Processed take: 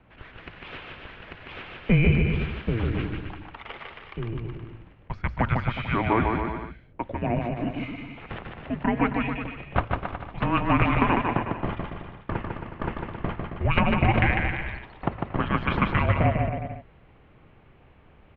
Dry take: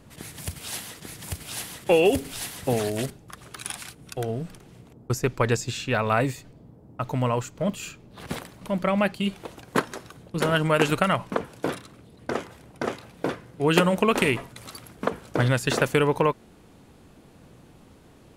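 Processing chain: notches 50/100/150/200/250/300/350/400/450 Hz; bouncing-ball echo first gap 0.15 s, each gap 0.8×, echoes 5; mistuned SSB -340 Hz 250–3200 Hz

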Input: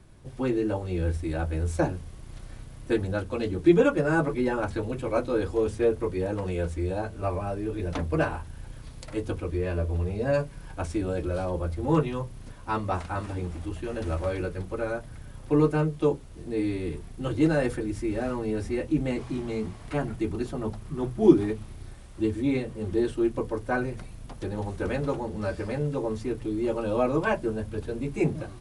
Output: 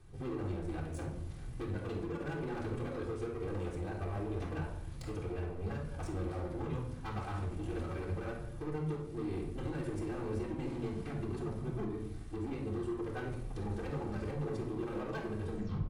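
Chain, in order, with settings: tape stop at the end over 0.70 s; compressor 16:1, threshold -28 dBFS, peak gain reduction 19.5 dB; tempo 1.8×; overloaded stage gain 32.5 dB; shoebox room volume 2100 m³, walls furnished, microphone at 3.7 m; gain -8 dB

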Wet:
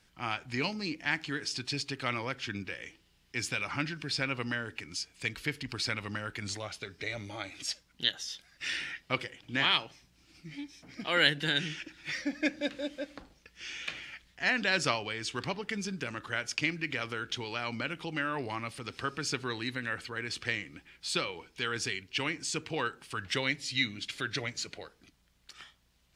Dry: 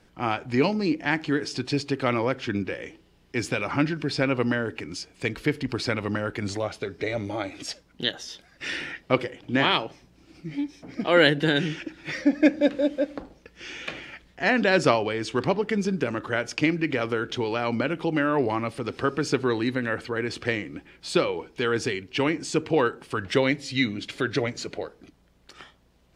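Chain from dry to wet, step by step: passive tone stack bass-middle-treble 5-5-5; gain +6 dB

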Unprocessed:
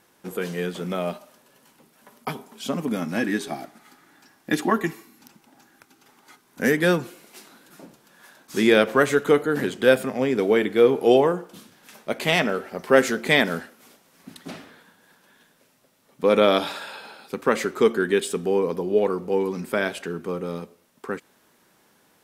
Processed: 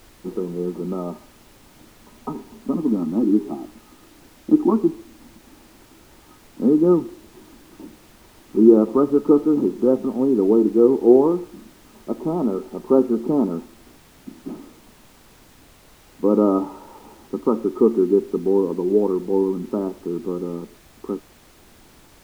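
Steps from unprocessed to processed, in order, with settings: rippled Chebyshev low-pass 1300 Hz, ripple 9 dB; small resonant body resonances 220/310 Hz, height 9 dB, ringing for 35 ms; added noise pink -52 dBFS; gain +1.5 dB

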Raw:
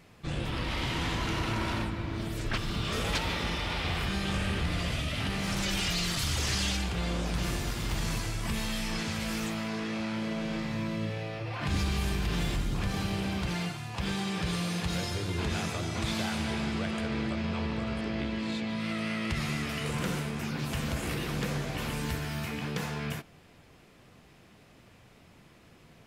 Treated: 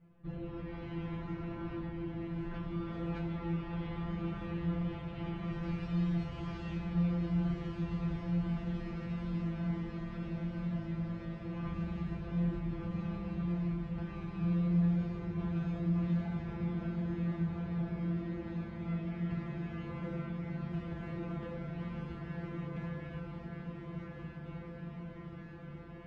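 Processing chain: LPF 1900 Hz 12 dB/oct; low shelf 460 Hz +11 dB; resonator 170 Hz, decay 0.33 s, harmonics all, mix 100%; diffused feedback echo 1.266 s, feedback 77%, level -4 dB; gain -3 dB

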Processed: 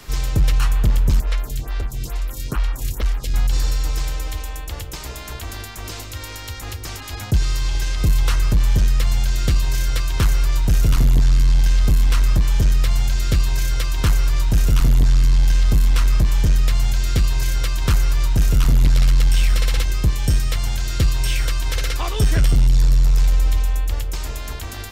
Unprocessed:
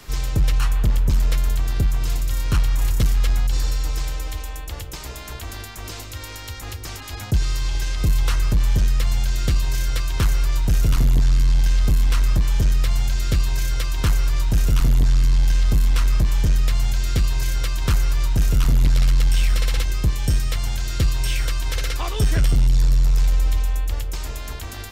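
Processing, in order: 1.2–3.34 photocell phaser 2.3 Hz; gain +2 dB

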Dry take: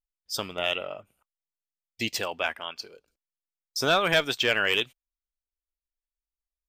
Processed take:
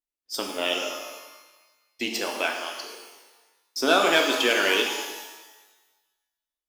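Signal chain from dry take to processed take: added harmonics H 7 -28 dB, 8 -40 dB, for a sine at -11.5 dBFS; resonant low shelf 200 Hz -11.5 dB, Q 3; shimmer reverb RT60 1.2 s, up +12 st, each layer -8 dB, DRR 1.5 dB

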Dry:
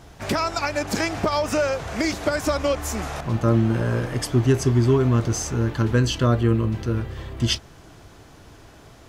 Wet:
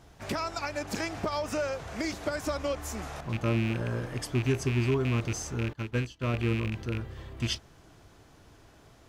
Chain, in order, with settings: rattling part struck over -19 dBFS, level -16 dBFS; 5.73–6.34 upward expander 2.5:1, over -31 dBFS; gain -9 dB

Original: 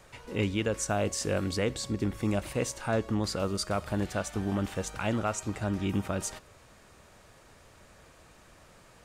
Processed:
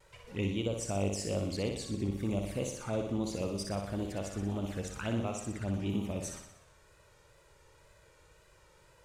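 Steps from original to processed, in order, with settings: envelope flanger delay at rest 2.3 ms, full sweep at -26.5 dBFS; wow and flutter 62 cents; flutter echo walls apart 10.4 m, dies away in 0.7 s; gain -4.5 dB

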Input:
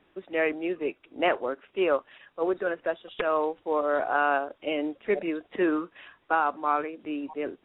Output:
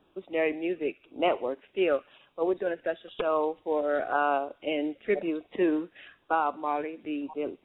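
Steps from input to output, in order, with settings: LFO notch saw down 0.97 Hz 890–2100 Hz; thin delay 66 ms, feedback 51%, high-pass 1700 Hz, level -19.5 dB

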